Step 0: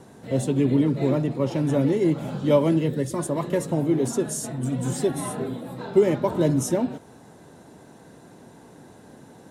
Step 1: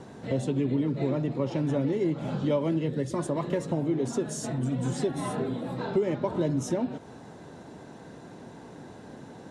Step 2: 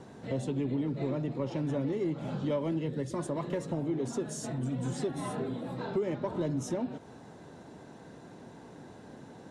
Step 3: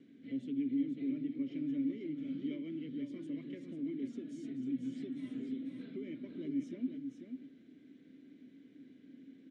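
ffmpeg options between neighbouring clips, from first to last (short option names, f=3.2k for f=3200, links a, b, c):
-af "acompressor=threshold=-30dB:ratio=2.5,lowpass=6.1k,volume=2.5dB"
-af "asoftclip=type=tanh:threshold=-16.5dB,volume=-4dB"
-filter_complex "[0:a]asplit=3[a][b][c];[a]bandpass=f=270:t=q:w=8,volume=0dB[d];[b]bandpass=f=2.29k:t=q:w=8,volume=-6dB[e];[c]bandpass=f=3.01k:t=q:w=8,volume=-9dB[f];[d][e][f]amix=inputs=3:normalize=0,aecho=1:1:492:0.447,volume=1dB"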